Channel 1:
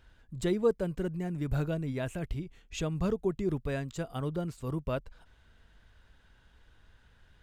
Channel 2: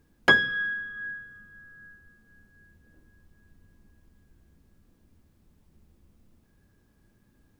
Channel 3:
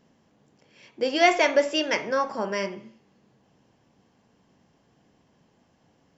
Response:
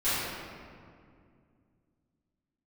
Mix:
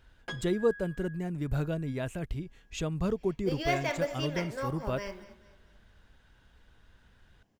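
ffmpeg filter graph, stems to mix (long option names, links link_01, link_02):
-filter_complex "[0:a]volume=0dB[link_01];[1:a]asoftclip=type=tanh:threshold=-12dB,asplit=2[link_02][link_03];[link_03]adelay=5,afreqshift=-1.1[link_04];[link_02][link_04]amix=inputs=2:normalize=1,volume=-13dB[link_05];[2:a]acrusher=bits=7:mode=log:mix=0:aa=0.000001,adelay=2450,volume=-11.5dB,asplit=2[link_06][link_07];[link_07]volume=-17dB,aecho=0:1:220|440|660|880|1100|1320:1|0.4|0.16|0.064|0.0256|0.0102[link_08];[link_01][link_05][link_06][link_08]amix=inputs=4:normalize=0"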